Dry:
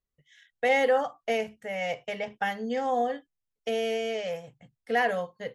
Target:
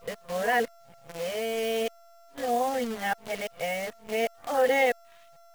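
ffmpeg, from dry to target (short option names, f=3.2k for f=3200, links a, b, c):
-af "areverse,aeval=exprs='val(0)+0.00355*sin(2*PI*680*n/s)':c=same,acrusher=bits=7:dc=4:mix=0:aa=0.000001"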